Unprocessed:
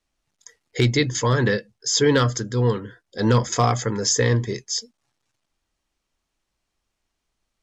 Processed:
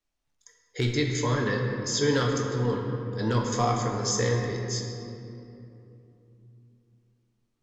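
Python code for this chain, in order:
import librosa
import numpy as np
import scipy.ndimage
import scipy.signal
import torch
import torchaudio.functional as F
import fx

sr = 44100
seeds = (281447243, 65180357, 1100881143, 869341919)

y = fx.room_shoebox(x, sr, seeds[0], volume_m3=120.0, walls='hard', distance_m=0.39)
y = y * 10.0 ** (-8.5 / 20.0)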